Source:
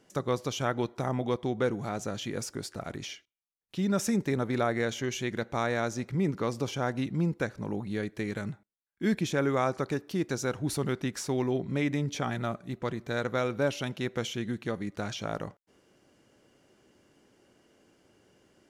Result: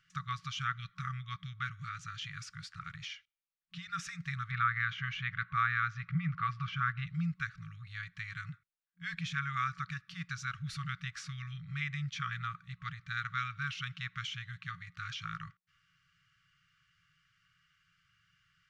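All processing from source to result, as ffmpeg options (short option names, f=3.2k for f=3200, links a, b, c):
-filter_complex "[0:a]asettb=1/sr,asplit=3[a][b][c];[a]atrim=end=4.514[d];[b]atrim=start=4.51:end=7.07,asetpts=PTS-STARTPTS,afade=t=in:d=0.004:c=qsin,afade=t=out:st=2.556:d=0.004:c=qsin,lowpass=3.1k,equalizer=f=480:t=o:w=2.6:g=13[e];[c]atrim=start=7.066[f];[d][e]acrossfade=d=0.004:c1=hsin:c2=qsin[g];[g][f]acrossfade=d=0.004:c1=qsin:c2=hsin,lowpass=3.6k,afftfilt=real='re*(1-between(b*sr/4096,180,1100))':imag='im*(1-between(b*sr/4096,180,1100))':win_size=4096:overlap=0.75,equalizer=f=70:w=0.43:g=-7.5"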